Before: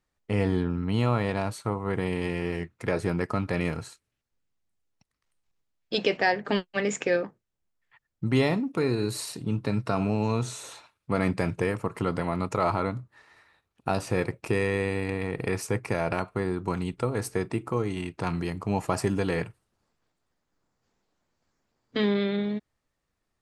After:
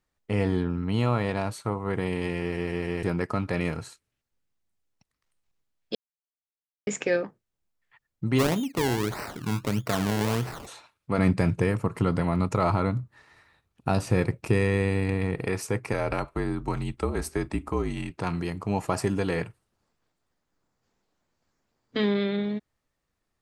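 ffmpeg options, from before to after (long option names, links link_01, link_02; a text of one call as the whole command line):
ffmpeg -i in.wav -filter_complex "[0:a]asplit=3[link_01][link_02][link_03];[link_01]afade=type=out:start_time=8.38:duration=0.02[link_04];[link_02]acrusher=samples=25:mix=1:aa=0.000001:lfo=1:lforange=25:lforate=1.6,afade=type=in:start_time=8.38:duration=0.02,afade=type=out:start_time=10.66:duration=0.02[link_05];[link_03]afade=type=in:start_time=10.66:duration=0.02[link_06];[link_04][link_05][link_06]amix=inputs=3:normalize=0,asettb=1/sr,asplit=3[link_07][link_08][link_09];[link_07]atrim=end=11.184[link_10];[link_08]atrim=start=11.18:end=15.35,asetpts=PTS-STARTPTS,afade=type=in:duration=0.004:curve=qsin,afade=type=out:start_time=4.166:duration=0.004:curve=qsin,bass=frequency=250:gain=7,treble=frequency=4000:gain=1[link_11];[link_09]atrim=start=15.346[link_12];[link_10][link_11]acrossfade=duration=0.004:curve1=hsin:curve2=qsin[link_13];[link_13][link_12]acrossfade=duration=0.004:curve1=qsin:curve2=hsin,asettb=1/sr,asplit=3[link_14][link_15][link_16];[link_14]atrim=end=15.934[link_17];[link_15]atrim=start=15.93:end=18.11,asetpts=PTS-STARTPTS,afade=type=in:duration=0.004:curve=qsin,afade=type=out:start_time=2.176:duration=0.004:curve=qsin,afreqshift=-49[link_18];[link_16]atrim=start=18.106[link_19];[link_17][link_18]acrossfade=duration=0.004:curve1=hsin:curve2=qsin[link_20];[link_20][link_19]acrossfade=duration=0.004:curve1=qsin:curve2=hsin,asplit=7[link_21][link_22][link_23][link_24][link_25][link_26][link_27];[link_21]atrim=end=2.582[link_28];[link_22]atrim=start=2.428:end=2.582[link_29];[link_23]atrim=start=2.428:end=2.582[link_30];[link_24]atrim=start=2.428:end=2.582[link_31];[link_25]atrim=start=3.028:end=5.95,asetpts=PTS-STARTPTS,afade=type=out:start_time=2.918:duration=0.004:curve=hsin[link_32];[link_26]atrim=start=5.95:end=6.87,asetpts=PTS-STARTPTS,volume=0[link_33];[link_27]atrim=start=6.87,asetpts=PTS-STARTPTS,afade=type=in:duration=0.004:curve=hsin[link_34];[link_28][link_29]acrossfade=duration=0.004:curve1=hsin:curve2=hsin[link_35];[link_35][link_30]acrossfade=duration=0.004:curve1=hsin:curve2=hsin[link_36];[link_36][link_31]acrossfade=duration=0.004:curve1=hsin:curve2=hsin[link_37];[link_32][link_33][link_34]concat=n=3:v=0:a=1[link_38];[link_37][link_38]acrossfade=duration=0.004:curve1=hsin:curve2=hsin" out.wav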